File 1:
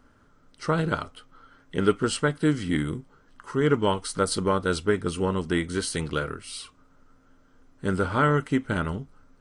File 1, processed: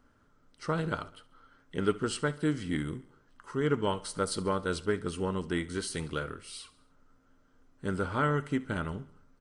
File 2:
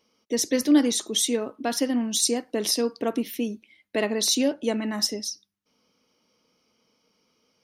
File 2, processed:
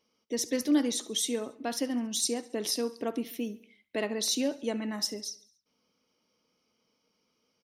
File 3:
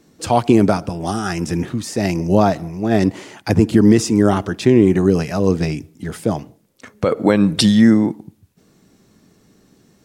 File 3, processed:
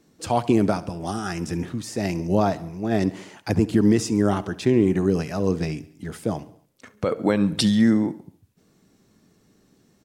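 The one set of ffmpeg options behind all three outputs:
-af "aecho=1:1:69|138|207|276:0.106|0.0572|0.0309|0.0167,volume=-6.5dB"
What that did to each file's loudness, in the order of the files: -6.5, -6.5, -6.5 LU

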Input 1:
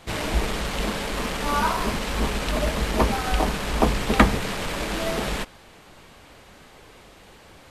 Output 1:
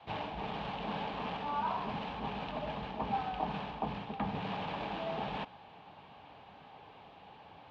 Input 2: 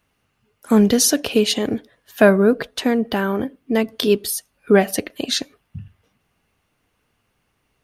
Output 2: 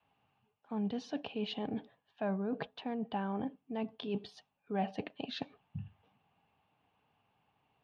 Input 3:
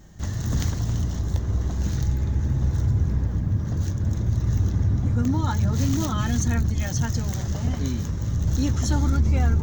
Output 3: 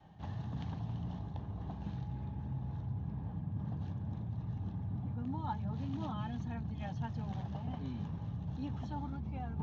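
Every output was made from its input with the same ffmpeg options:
-af "adynamicequalizer=threshold=0.0282:dfrequency=180:dqfactor=1.5:tfrequency=180:tqfactor=1.5:attack=5:release=100:ratio=0.375:range=2.5:mode=boostabove:tftype=bell,areverse,acompressor=threshold=-28dB:ratio=5,areverse,highpass=120,equalizer=f=230:t=q:w=4:g=-4,equalizer=f=350:t=q:w=4:g=-8,equalizer=f=520:t=q:w=4:g=-5,equalizer=f=820:t=q:w=4:g=9,equalizer=f=1.4k:t=q:w=4:g=-7,equalizer=f=2k:t=q:w=4:g=-9,lowpass=f=3.2k:w=0.5412,lowpass=f=3.2k:w=1.3066,volume=-4dB"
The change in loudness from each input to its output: -13.5, -20.5, -16.0 LU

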